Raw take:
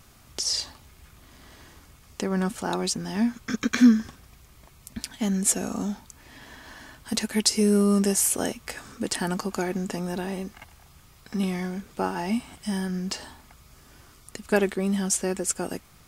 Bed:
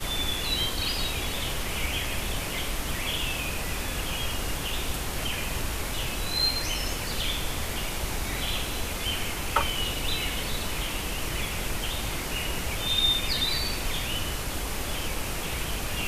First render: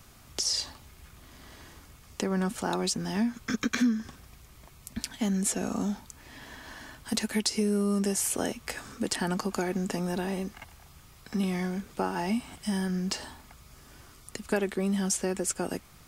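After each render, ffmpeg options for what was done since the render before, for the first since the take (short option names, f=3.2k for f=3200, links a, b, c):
-filter_complex "[0:a]acrossover=split=280|1400|5800[a][b][c][d];[d]alimiter=limit=-17.5dB:level=0:latency=1:release=439[e];[a][b][c][e]amix=inputs=4:normalize=0,acompressor=threshold=-25dB:ratio=3"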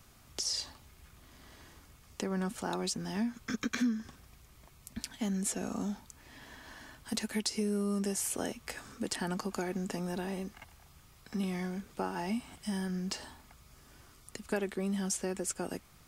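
-af "volume=-5.5dB"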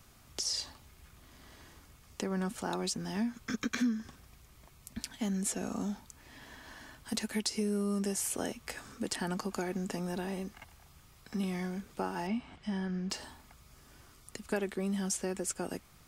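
-filter_complex "[0:a]asettb=1/sr,asplit=3[a][b][c];[a]atrim=end=12.274[d];[b]atrim=start=12.27:end=13.1,asetpts=PTS-STARTPTS,afade=t=in:d=0.004:c=qsin,afade=t=out:st=0.826:d=0.004:c=qsin,lowpass=3.5k[e];[c]atrim=start=13.096[f];[d][e]acrossfade=d=0.004:c1=hsin:c2=qsin[g];[g][f]acrossfade=d=0.004:c1=qsin:c2=hsin"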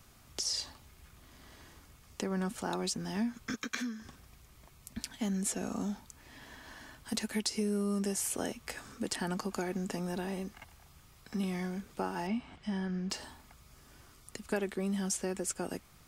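-filter_complex "[0:a]asettb=1/sr,asplit=3[a][b][c];[a]atrim=end=3.544[d];[b]atrim=start=3.54:end=4.02,asetpts=PTS-STARTPTS,afade=t=in:d=0.004:c=qsin,afade=t=out:st=0.476:d=0.004:c=qsin,lowshelf=f=380:g=-11[e];[c]atrim=start=4.016[f];[d][e]acrossfade=d=0.004:c1=hsin:c2=qsin[g];[g][f]acrossfade=d=0.004:c1=qsin:c2=hsin"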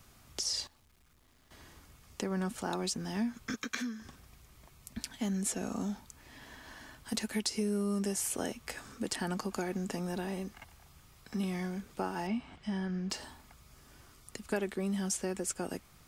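-filter_complex "[0:a]asettb=1/sr,asplit=3[a][b][c];[a]atrim=end=0.674[d];[b]atrim=start=0.67:end=1.51,asetpts=PTS-STARTPTS,afade=t=in:d=0.004:c=qsin,afade=t=out:st=0.836:d=0.004:c=qsin,aeval=exprs='(tanh(1780*val(0)+0.65)-tanh(0.65))/1780':c=same[e];[c]atrim=start=1.506[f];[d][e]acrossfade=d=0.004:c1=hsin:c2=qsin[g];[g][f]acrossfade=d=0.004:c1=qsin:c2=hsin"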